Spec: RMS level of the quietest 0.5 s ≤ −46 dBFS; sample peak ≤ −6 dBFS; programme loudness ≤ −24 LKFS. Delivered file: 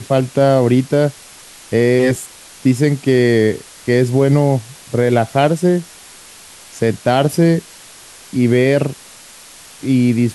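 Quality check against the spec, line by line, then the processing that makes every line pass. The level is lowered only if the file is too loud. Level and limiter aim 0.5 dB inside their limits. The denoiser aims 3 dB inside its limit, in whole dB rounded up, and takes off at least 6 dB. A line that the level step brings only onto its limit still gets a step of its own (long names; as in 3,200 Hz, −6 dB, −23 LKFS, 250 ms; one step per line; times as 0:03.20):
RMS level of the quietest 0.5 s −40 dBFS: out of spec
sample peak −2.5 dBFS: out of spec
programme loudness −15.5 LKFS: out of spec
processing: level −9 dB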